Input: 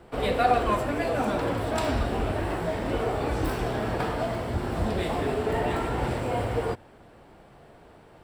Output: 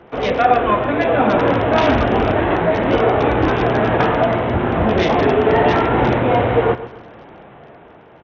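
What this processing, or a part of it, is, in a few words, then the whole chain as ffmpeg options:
Bluetooth headset: -filter_complex "[0:a]asettb=1/sr,asplit=3[a][b][c];[a]atrim=end=5.934[d];[b]atrim=start=5.93:end=6.33,asetpts=PTS-STARTPTS,afade=t=in:d=0.004:c=qsin,afade=t=out:st=0.396:d=0.004:c=qsin,equalizer=f=260:t=o:w=0.77:g=3[e];[c]atrim=start=6.326[f];[d][e]acrossfade=d=0.004:c1=hsin:c2=qsin[g];[g][f]acrossfade=d=0.004:c1=qsin:c2=hsin,highpass=f=150:p=1,aecho=1:1:133|266|399:0.178|0.0587|0.0194,dynaudnorm=f=120:g=17:m=5.5dB,aresample=8000,aresample=44100,volume=8dB" -ar 48000 -c:a sbc -b:a 64k

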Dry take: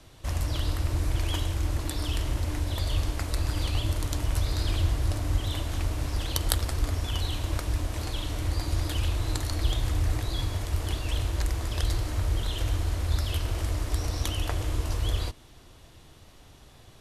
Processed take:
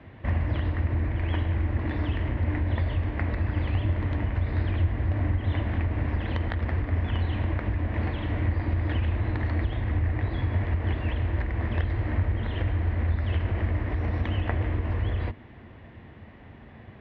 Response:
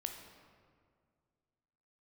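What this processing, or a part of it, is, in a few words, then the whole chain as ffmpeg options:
bass amplifier: -af "acompressor=threshold=-27dB:ratio=6,highpass=60,equalizer=f=92:t=q:w=4:g=5,equalizer=f=220:t=q:w=4:g=10,equalizer=f=1.3k:t=q:w=4:g=-5,equalizer=f=1.9k:t=q:w=4:g=7,lowpass=f=2.3k:w=0.5412,lowpass=f=2.3k:w=1.3066,volume=5.5dB"

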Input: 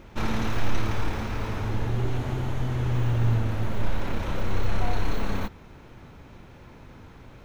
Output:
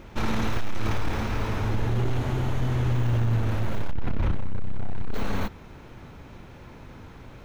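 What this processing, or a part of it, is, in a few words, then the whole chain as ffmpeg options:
limiter into clipper: -filter_complex "[0:a]asettb=1/sr,asplit=3[a][b][c];[a]atrim=end=3.914[d];[b]atrim=start=3.91:end=5.14,asetpts=PTS-STARTPTS,afade=t=in:d=0.004:c=qsin,afade=t=out:st=1.226:d=0.004:c=qsin,bass=f=250:g=10,treble=f=4k:g=-10[e];[c]atrim=start=5.136[f];[d][e]acrossfade=d=0.004:c1=hsin:c2=qsin[g];[g][f]acrossfade=d=0.004:c1=qsin:c2=hsin,alimiter=limit=-18dB:level=0:latency=1:release=14,asoftclip=type=hard:threshold=-20.5dB,volume=2.5dB"

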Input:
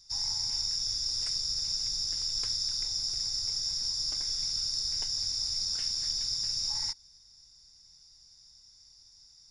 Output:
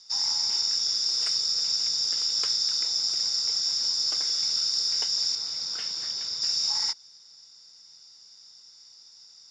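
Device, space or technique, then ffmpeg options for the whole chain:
television speaker: -filter_complex "[0:a]highpass=f=170:w=0.5412,highpass=f=170:w=1.3066,equalizer=f=170:t=q:w=4:g=-7,equalizer=f=250:t=q:w=4:g=-7,equalizer=f=480:t=q:w=4:g=3,equalizer=f=1.3k:t=q:w=4:g=5,equalizer=f=3k:t=q:w=4:g=5,equalizer=f=6k:t=q:w=4:g=-3,lowpass=f=7.7k:w=0.5412,lowpass=f=7.7k:w=1.3066,asettb=1/sr,asplit=3[a][b][c];[a]atrim=end=5.354[d];[b]atrim=start=5.35:end=6.42,asetpts=PTS-STARTPTS,afade=t=in:d=0.004:c=qsin,afade=t=out:st=1.066:d=0.004:c=qsin,highshelf=f=4.4k:g=-9.5[e];[c]atrim=start=6.416[f];[d][e]acrossfade=d=0.004:c1=hsin:c2=qsin[g];[g][f]acrossfade=d=0.004:c1=qsin:c2=hsin,volume=7dB"

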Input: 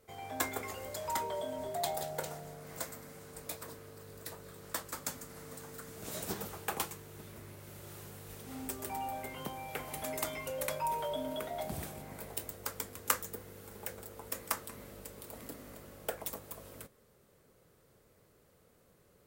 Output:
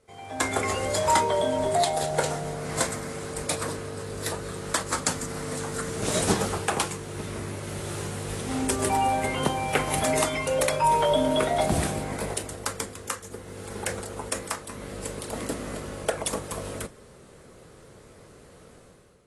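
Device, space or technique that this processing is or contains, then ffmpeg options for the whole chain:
low-bitrate web radio: -af "dynaudnorm=f=140:g=7:m=13dB,alimiter=limit=-9.5dB:level=0:latency=1:release=419,volume=2dB" -ar 24000 -c:a aac -b:a 32k

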